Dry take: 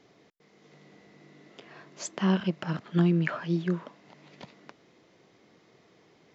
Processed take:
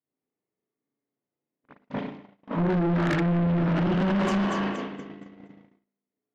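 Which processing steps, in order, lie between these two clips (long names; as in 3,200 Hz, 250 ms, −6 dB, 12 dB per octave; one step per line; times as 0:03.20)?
played backwards from end to start
parametric band 260 Hz +10.5 dB 0.28 octaves
feedback echo with a high-pass in the loop 236 ms, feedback 53%, high-pass 660 Hz, level −7.5 dB
spring reverb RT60 1.1 s, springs 35/56 ms, chirp 75 ms, DRR −9 dB
in parallel at 0 dB: downward compressor, threshold −24 dBFS, peak gain reduction 14.5 dB
on the sum: low-pass filter 1,500 Hz 6 dB per octave
brickwall limiter −13.5 dBFS, peak gain reduction 11.5 dB
soft clipping −26 dBFS, distortion −7 dB
noise gate −33 dBFS, range −50 dB
level +4.5 dB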